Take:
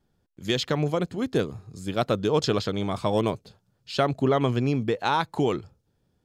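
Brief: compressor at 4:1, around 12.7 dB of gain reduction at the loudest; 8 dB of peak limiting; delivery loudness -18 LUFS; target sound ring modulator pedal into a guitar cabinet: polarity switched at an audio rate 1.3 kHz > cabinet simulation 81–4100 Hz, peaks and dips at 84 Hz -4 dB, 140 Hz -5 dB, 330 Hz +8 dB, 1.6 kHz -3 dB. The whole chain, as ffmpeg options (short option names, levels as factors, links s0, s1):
-af "acompressor=threshold=0.02:ratio=4,alimiter=level_in=1.58:limit=0.0631:level=0:latency=1,volume=0.631,aeval=exprs='val(0)*sgn(sin(2*PI*1300*n/s))':c=same,highpass=81,equalizer=f=84:t=q:w=4:g=-4,equalizer=f=140:t=q:w=4:g=-5,equalizer=f=330:t=q:w=4:g=8,equalizer=f=1600:t=q:w=4:g=-3,lowpass=f=4100:w=0.5412,lowpass=f=4100:w=1.3066,volume=11.2"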